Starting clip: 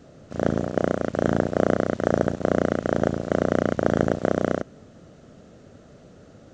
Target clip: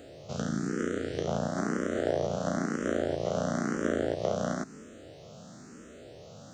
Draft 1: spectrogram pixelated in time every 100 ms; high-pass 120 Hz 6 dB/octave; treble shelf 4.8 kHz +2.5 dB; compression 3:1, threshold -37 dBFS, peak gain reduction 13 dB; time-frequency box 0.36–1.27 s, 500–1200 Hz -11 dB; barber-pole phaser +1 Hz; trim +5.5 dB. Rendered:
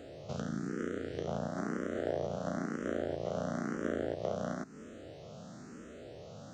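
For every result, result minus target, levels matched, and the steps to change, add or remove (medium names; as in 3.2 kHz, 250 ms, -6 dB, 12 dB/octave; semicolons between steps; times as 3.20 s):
compression: peak gain reduction +5.5 dB; 8 kHz band -4.5 dB
change: compression 3:1, threshold -28.5 dBFS, peak gain reduction 7.5 dB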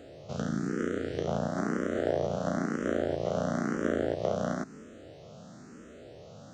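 8 kHz band -5.0 dB
change: treble shelf 4.8 kHz +10.5 dB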